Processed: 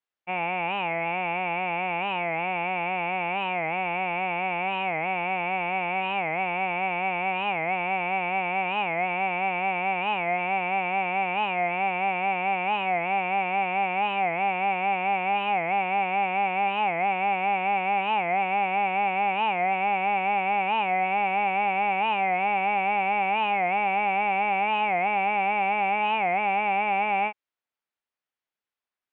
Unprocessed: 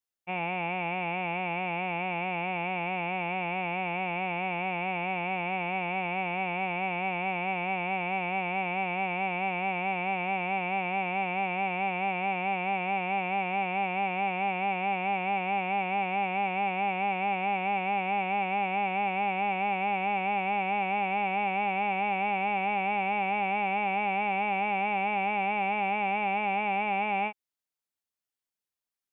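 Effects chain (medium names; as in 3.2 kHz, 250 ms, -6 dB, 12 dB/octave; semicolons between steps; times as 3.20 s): low-pass 2.7 kHz 12 dB/octave; bass shelf 320 Hz -10 dB; warped record 45 rpm, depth 160 cents; trim +6 dB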